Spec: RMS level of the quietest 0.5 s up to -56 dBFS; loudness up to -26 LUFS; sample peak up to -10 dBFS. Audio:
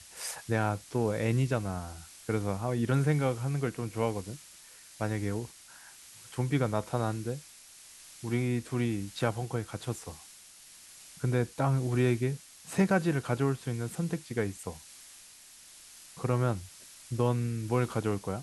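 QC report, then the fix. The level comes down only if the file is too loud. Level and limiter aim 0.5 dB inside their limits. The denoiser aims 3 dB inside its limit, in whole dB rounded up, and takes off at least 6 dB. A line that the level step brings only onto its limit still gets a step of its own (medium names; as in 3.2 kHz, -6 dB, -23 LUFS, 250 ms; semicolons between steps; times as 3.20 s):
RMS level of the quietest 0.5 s -53 dBFS: fail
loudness -31.5 LUFS: pass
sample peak -13.5 dBFS: pass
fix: noise reduction 6 dB, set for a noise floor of -53 dBFS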